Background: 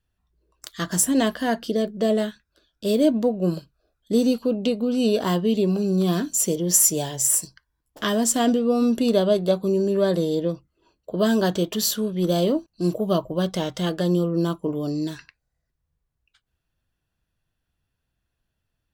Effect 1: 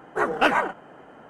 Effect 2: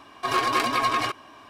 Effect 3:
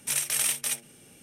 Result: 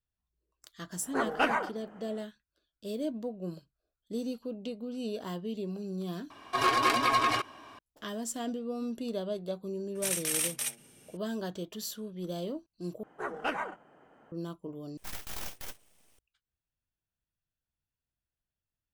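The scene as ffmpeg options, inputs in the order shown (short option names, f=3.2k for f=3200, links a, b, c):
-filter_complex "[1:a]asplit=2[a][b];[3:a]asplit=2[c][d];[0:a]volume=-15.5dB[e];[d]aeval=exprs='abs(val(0))':c=same[f];[e]asplit=4[g][h][i][j];[g]atrim=end=6.304[k];[2:a]atrim=end=1.49,asetpts=PTS-STARTPTS,volume=-2.5dB[l];[h]atrim=start=7.786:end=13.034[m];[b]atrim=end=1.29,asetpts=PTS-STARTPTS,volume=-13dB[n];[i]atrim=start=14.316:end=14.974[o];[f]atrim=end=1.22,asetpts=PTS-STARTPTS,volume=-10.5dB[p];[j]atrim=start=16.186[q];[a]atrim=end=1.29,asetpts=PTS-STARTPTS,volume=-7.5dB,afade=t=in:d=0.1,afade=t=out:st=1.19:d=0.1,adelay=980[r];[c]atrim=end=1.22,asetpts=PTS-STARTPTS,volume=-4.5dB,afade=t=in:d=0.004:c=hsin,afade=t=out:st=1.216:d=0.004:c=hsin,adelay=9950[s];[k][l]acrossfade=d=0.004:c1=hsin:c2=hsin[t];[t][m]acrossfade=d=0.004:c1=hsin:c2=hsin[u];[u][n]acrossfade=d=0.004:c1=hsin:c2=hsin[v];[v][o]acrossfade=d=0.004:c1=hsin:c2=hsin[w];[w][p]acrossfade=d=0.004:c1=hsin:c2=hsin[x];[x][q]acrossfade=d=0.004:c1=hsin:c2=hsin[y];[y][r][s]amix=inputs=3:normalize=0"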